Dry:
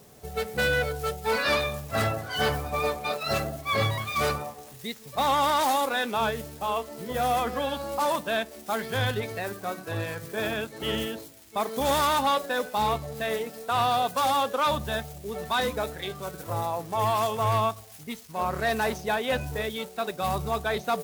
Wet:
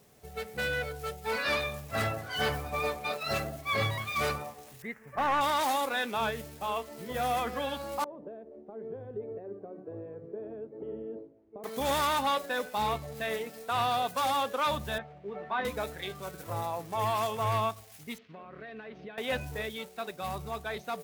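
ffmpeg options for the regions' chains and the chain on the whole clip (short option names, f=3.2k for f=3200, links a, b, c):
-filter_complex "[0:a]asettb=1/sr,asplit=3[a][b][c];[a]atrim=end=4.824[d];[b]atrim=start=4.82:end=5.41,asetpts=PTS-STARTPTS,afade=t=in:d=0.004:c=qsin,afade=t=out:st=0.586:d=0.004:c=qsin,highshelf=f=2.6k:t=q:w=3:g=-13.5,aeval=exprs='clip(val(0),-1,0.0841)':c=same[e];[c]atrim=start=5.406[f];[d][e]acrossfade=d=0.004:c1=hsin:c2=qsin[g];[g][f]acrossfade=d=0.004:c1=qsin:c2=hsin,asettb=1/sr,asplit=3[h][i][j];[h]atrim=end=8.044[k];[i]atrim=start=8.04:end=11.64,asetpts=PTS-STARTPTS,afade=t=in:d=0.004:c=qsin,afade=t=out:st=3.596:d=0.004:c=qsin,lowshelf=f=180:g=-9.5,acompressor=threshold=-33dB:ratio=5:attack=3.2:release=140:knee=1:detection=peak,lowpass=f=430:t=q:w=2.3[l];[j]atrim=start=11.636[m];[k][l]acrossfade=d=0.004:c1=hsin:c2=qsin[n];[n][m]acrossfade=d=0.004:c1=qsin:c2=hsin,asettb=1/sr,asplit=3[o][p][q];[o]atrim=end=14.984[r];[p]atrim=start=14.98:end=15.65,asetpts=PTS-STARTPTS,afade=t=in:d=0.004:c=qsin,afade=t=out:st=0.666:d=0.004:c=qsin,highpass=190,lowpass=2.5k,aemphasis=mode=reproduction:type=75kf,asplit=2[s][t];[t]adelay=15,volume=-7dB[u];[s][u]amix=inputs=2:normalize=0,atrim=end_sample=29547[v];[q]atrim=start=15.646[w];[r][v]acrossfade=d=0.004:c1=hsin:c2=qsin[x];[x][w]acrossfade=d=0.004:c1=qsin:c2=hsin,asettb=1/sr,asplit=3[y][z][aa];[y]atrim=end=18.184[ab];[z]atrim=start=18.18:end=19.18,asetpts=PTS-STARTPTS,afade=t=in:d=0.004:c=qsin,afade=t=out:st=0.996:d=0.004:c=qsin,acompressor=threshold=-37dB:ratio=10:attack=3.2:release=140:knee=1:detection=peak,highpass=130,equalizer=f=200:t=q:w=4:g=4,equalizer=f=290:t=q:w=4:g=5,equalizer=f=450:t=q:w=4:g=4,equalizer=f=880:t=q:w=4:g=-8,lowpass=f=3.4k:w=0.5412,lowpass=f=3.4k:w=1.3066[ac];[aa]atrim=start=19.176[ad];[ab][ac]acrossfade=d=0.004:c1=hsin:c2=qsin[ae];[ae][ad]acrossfade=d=0.004:c1=qsin:c2=hsin,equalizer=f=2.2k:w=1.5:g=3.5,dynaudnorm=f=170:g=17:m=3.5dB,volume=-8.5dB"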